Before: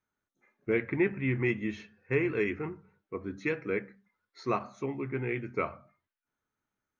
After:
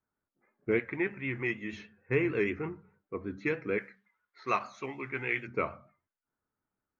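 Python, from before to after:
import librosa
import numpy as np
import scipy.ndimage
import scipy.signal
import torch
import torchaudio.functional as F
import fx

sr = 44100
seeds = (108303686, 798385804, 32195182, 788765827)

y = fx.env_lowpass(x, sr, base_hz=1400.0, full_db=-28.0)
y = fx.low_shelf(y, sr, hz=410.0, db=-9.5, at=(0.79, 1.73))
y = fx.vibrato(y, sr, rate_hz=6.5, depth_cents=46.0)
y = fx.tilt_shelf(y, sr, db=-9.0, hz=790.0, at=(3.78, 5.47))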